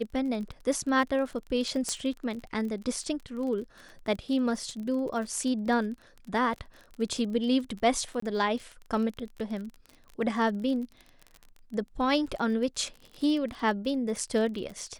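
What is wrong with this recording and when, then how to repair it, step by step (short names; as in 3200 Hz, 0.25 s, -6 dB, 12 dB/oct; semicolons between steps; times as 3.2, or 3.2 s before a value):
crackle 32/s -36 dBFS
1.89 pop -17 dBFS
8.2–8.22 gap 24 ms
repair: de-click; interpolate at 8.2, 24 ms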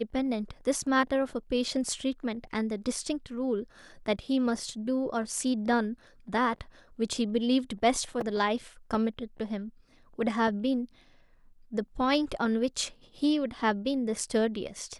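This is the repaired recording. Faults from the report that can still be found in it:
1.89 pop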